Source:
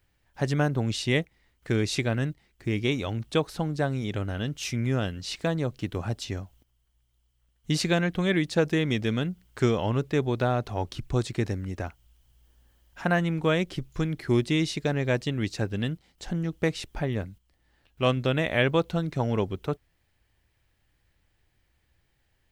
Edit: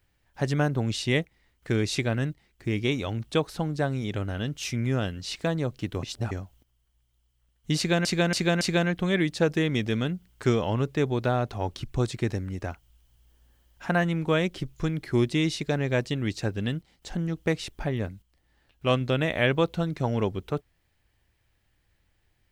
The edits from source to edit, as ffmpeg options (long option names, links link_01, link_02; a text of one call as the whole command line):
ffmpeg -i in.wav -filter_complex "[0:a]asplit=6[link_01][link_02][link_03][link_04][link_05][link_06];[link_01]atrim=end=6.032[link_07];[link_02]atrim=start=6.028:end=6.312,asetpts=PTS-STARTPTS,areverse[link_08];[link_03]atrim=start=6.308:end=8.052[link_09];[link_04]atrim=start=7.768:end=8.052[link_10];[link_05]atrim=start=7.768:end=8.052[link_11];[link_06]atrim=start=7.768[link_12];[link_07][link_08]acrossfade=duration=0.004:curve1=hsin:curve2=hsin[link_13];[link_13][link_09]acrossfade=duration=0.004:curve1=hsin:curve2=hsin[link_14];[link_14][link_10]acrossfade=duration=0.004:curve1=hsin:curve2=hsin[link_15];[link_15][link_11]acrossfade=duration=0.004:curve1=hsin:curve2=hsin[link_16];[link_16][link_12]acrossfade=duration=0.004:curve1=hsin:curve2=hsin" out.wav